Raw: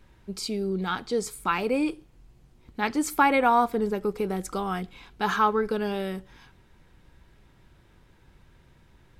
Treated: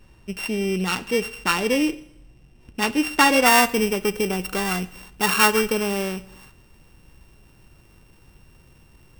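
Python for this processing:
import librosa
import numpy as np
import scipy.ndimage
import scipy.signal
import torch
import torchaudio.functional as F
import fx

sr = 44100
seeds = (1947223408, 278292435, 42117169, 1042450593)

y = np.r_[np.sort(x[:len(x) // 16 * 16].reshape(-1, 16), axis=1).ravel(), x[len(x) // 16 * 16:]]
y = fx.high_shelf(y, sr, hz=9400.0, db=fx.steps((0.0, -6.0), (3.45, 5.0)))
y = fx.rev_schroeder(y, sr, rt60_s=0.81, comb_ms=33, drr_db=17.5)
y = y * 10.0 ** (4.5 / 20.0)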